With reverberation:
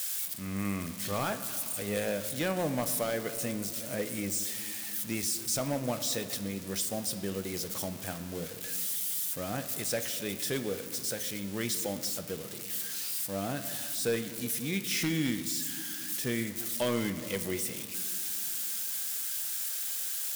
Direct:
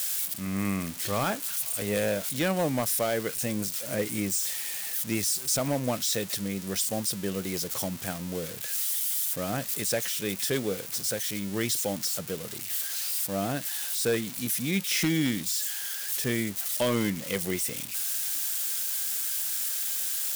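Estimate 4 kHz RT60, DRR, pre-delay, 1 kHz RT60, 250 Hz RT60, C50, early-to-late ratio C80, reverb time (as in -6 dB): 1.2 s, 8.5 dB, 3 ms, 2.4 s, 3.5 s, 11.0 dB, 12.0 dB, 2.4 s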